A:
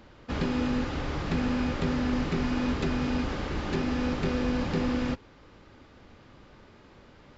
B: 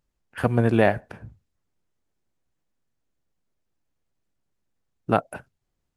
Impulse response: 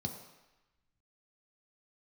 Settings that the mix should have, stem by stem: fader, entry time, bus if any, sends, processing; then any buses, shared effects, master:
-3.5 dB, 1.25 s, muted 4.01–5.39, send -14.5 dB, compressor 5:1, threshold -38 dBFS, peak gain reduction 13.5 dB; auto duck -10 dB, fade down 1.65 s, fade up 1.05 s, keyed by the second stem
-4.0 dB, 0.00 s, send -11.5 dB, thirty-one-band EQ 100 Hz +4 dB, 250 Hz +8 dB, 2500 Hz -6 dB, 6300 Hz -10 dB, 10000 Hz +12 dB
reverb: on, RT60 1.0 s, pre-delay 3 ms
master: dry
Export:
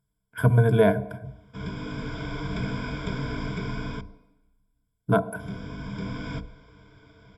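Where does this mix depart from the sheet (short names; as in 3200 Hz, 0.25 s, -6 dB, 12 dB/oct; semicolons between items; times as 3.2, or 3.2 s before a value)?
stem A: missing compressor 5:1, threshold -38 dBFS, peak gain reduction 13.5 dB; master: extra ripple EQ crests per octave 1.7, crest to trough 18 dB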